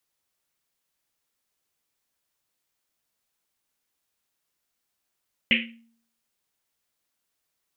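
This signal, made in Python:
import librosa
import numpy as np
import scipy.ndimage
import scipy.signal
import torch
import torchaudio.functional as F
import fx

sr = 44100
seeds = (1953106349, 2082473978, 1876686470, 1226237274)

y = fx.risset_drum(sr, seeds[0], length_s=1.1, hz=230.0, decay_s=0.61, noise_hz=2500.0, noise_width_hz=1100.0, noise_pct=65)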